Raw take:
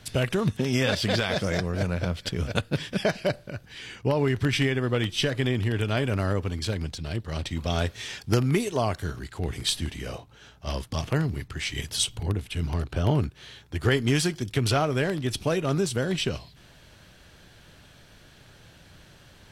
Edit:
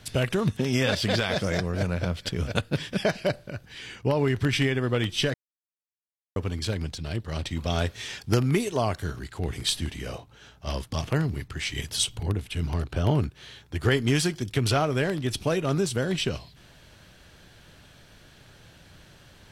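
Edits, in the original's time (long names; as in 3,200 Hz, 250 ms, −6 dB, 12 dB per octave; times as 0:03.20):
0:05.34–0:06.36: silence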